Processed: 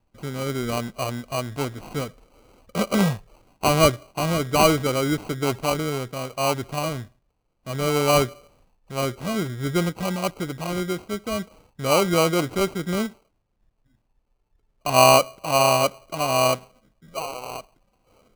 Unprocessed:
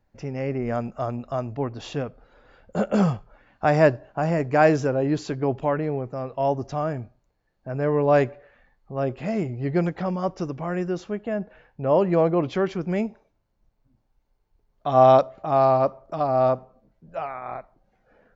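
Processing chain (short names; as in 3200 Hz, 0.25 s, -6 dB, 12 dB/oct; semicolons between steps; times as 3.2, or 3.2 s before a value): sample-and-hold 25×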